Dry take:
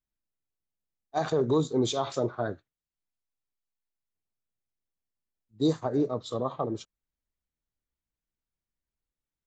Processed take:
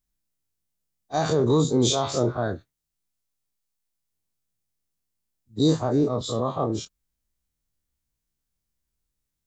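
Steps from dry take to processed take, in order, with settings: spectral dilation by 60 ms; tone controls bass +6 dB, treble +7 dB

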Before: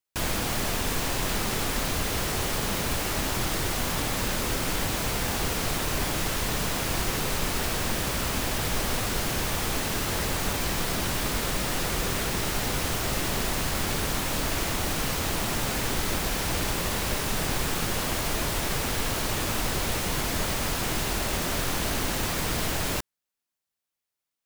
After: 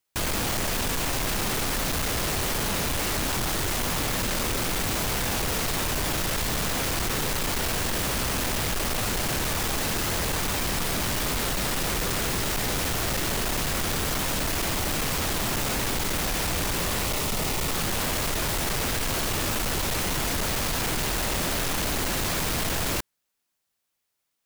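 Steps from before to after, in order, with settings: overloaded stage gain 32.5 dB; 17.05–17.72 notch 1600 Hz, Q 6.4; gain +7.5 dB

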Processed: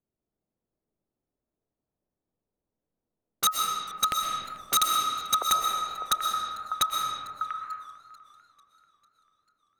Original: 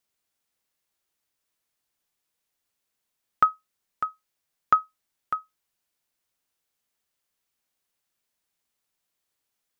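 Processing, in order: delay with a stepping band-pass 0.695 s, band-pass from 540 Hz, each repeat 0.7 oct, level -4.5 dB; wrapped overs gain 23 dB; reverb RT60 2.3 s, pre-delay 87 ms, DRR 0.5 dB; low-pass opened by the level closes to 400 Hz, open at -32.5 dBFS; warbling echo 0.444 s, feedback 56%, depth 127 cents, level -23.5 dB; gain +7 dB

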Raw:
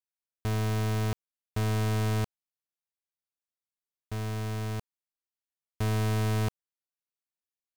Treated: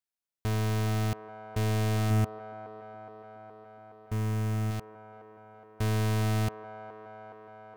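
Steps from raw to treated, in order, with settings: 2.1–4.71 fifteen-band EQ 100 Hz +4 dB, 250 Hz +5 dB, 4000 Hz -7 dB; band-limited delay 0.418 s, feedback 74%, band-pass 710 Hz, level -8 dB

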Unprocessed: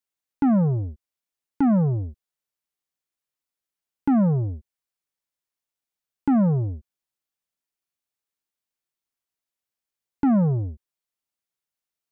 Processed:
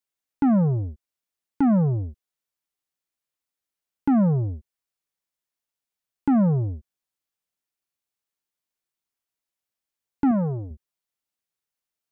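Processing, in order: 10.31–10.71 low shelf 180 Hz -9 dB

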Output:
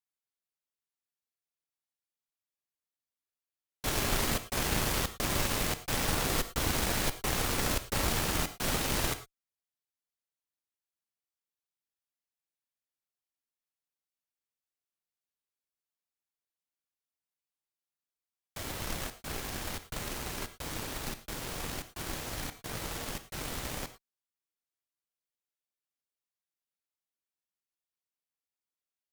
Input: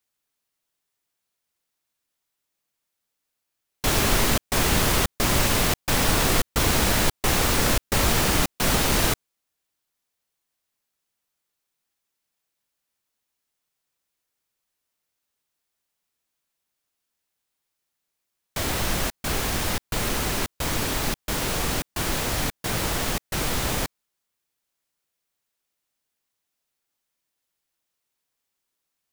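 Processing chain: added harmonics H 5 -22 dB, 7 -17 dB, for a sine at -7 dBFS; non-linear reverb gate 0.13 s flat, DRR 10.5 dB; gain -9 dB

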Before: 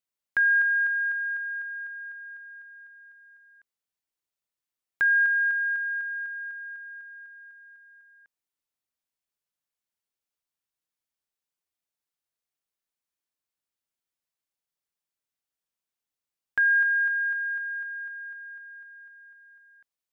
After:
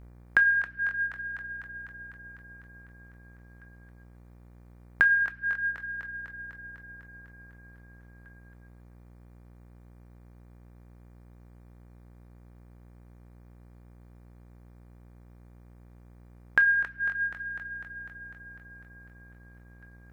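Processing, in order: thinning echo 0.272 s, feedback 22%, level -4.5 dB; compressor 2:1, threshold -30 dBFS, peak gain reduction 6 dB; buzz 60 Hz, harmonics 40, -57 dBFS -8 dB/oct; on a send at -7.5 dB: tilt shelf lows -5 dB, about 1200 Hz + reverb RT60 1.2 s, pre-delay 7 ms; on the sum: reverb removal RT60 0.72 s; gain +8.5 dB

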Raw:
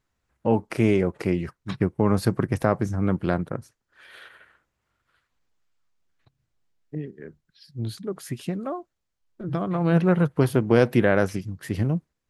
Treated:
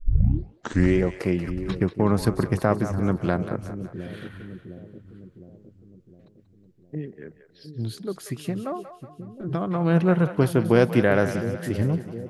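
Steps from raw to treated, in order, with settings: tape start at the beginning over 1.01 s; split-band echo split 490 Hz, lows 0.71 s, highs 0.185 s, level -11 dB

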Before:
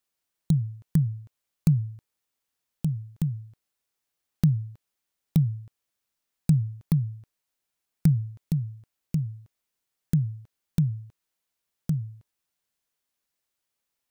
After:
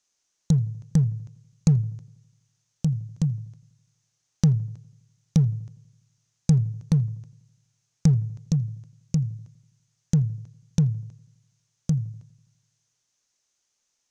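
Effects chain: in parallel at -6 dB: hard clip -21.5 dBFS, distortion -9 dB; on the sum: synth low-pass 6300 Hz, resonance Q 5.4; darkening echo 82 ms, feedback 60%, low-pass 1500 Hz, level -21.5 dB

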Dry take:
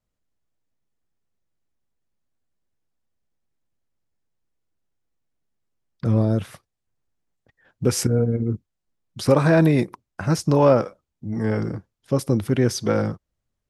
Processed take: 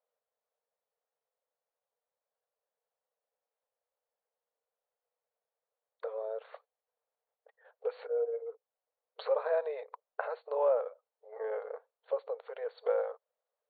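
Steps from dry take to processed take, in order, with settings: high shelf 2300 Hz -10 dB; compressor 6:1, threshold -28 dBFS, peak gain reduction 15.5 dB; brick-wall FIR band-pass 430–4500 Hz; bell 2900 Hz -12 dB 3 oct; gain +7.5 dB

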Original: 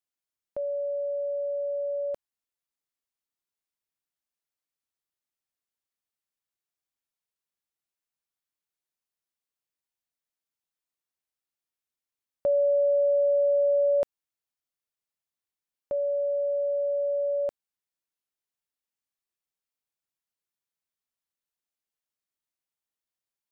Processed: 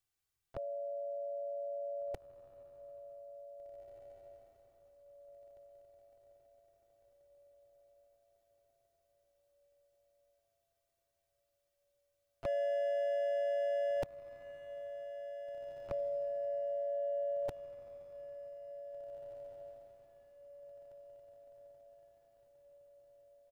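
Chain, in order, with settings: resonant low shelf 200 Hz +10 dB, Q 1.5; comb 2.6 ms, depth 75%; overloaded stage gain 33 dB; harmoniser +3 st -10 dB; on a send: diffused feedback echo 1.97 s, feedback 42%, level -11.5 dB; on the sum: gain +1 dB

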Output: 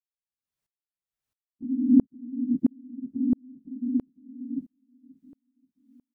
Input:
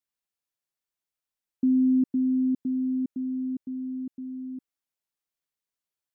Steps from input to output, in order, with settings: phase scrambler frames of 50 ms; tone controls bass +10 dB, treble -2 dB; in parallel at -1.5 dB: compressor, threshold -26 dBFS, peak gain reduction 13.5 dB; on the sum: feedback echo 0.532 s, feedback 48%, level -16 dB; dB-ramp tremolo swelling 1.5 Hz, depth 37 dB; gain +1 dB

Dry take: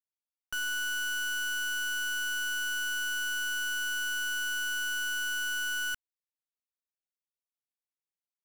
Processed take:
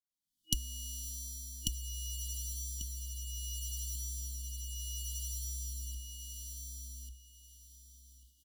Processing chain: recorder AGC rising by 57 dB/s; frequency shift -64 Hz; rotary speaker horn 0.7 Hz, later 6.3 Hz, at 7.06; FFT band-reject 320–2900 Hz; on a send: feedback echo 1.142 s, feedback 24%, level -3.5 dB; on the sum: gain -2.5 dB

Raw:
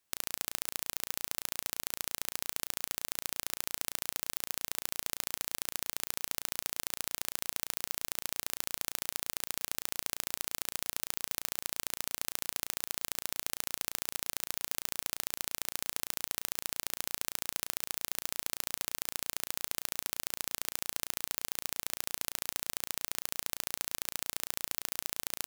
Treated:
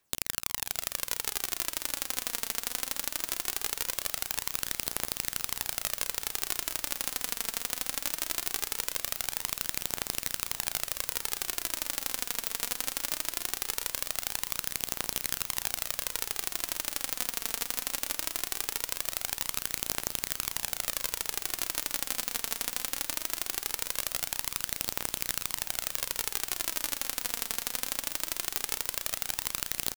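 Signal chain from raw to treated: tempo 0.85×; phaser 0.2 Hz, delay 4.5 ms, feedback 50%; diffused feedback echo 0.662 s, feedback 77%, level -15 dB; gain +3 dB

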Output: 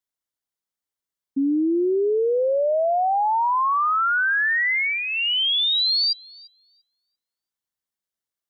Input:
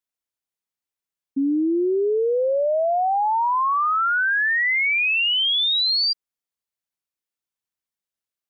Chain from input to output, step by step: bell 2500 Hz -7 dB 0.23 oct; on a send: thinning echo 0.343 s, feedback 15%, high-pass 420 Hz, level -24 dB

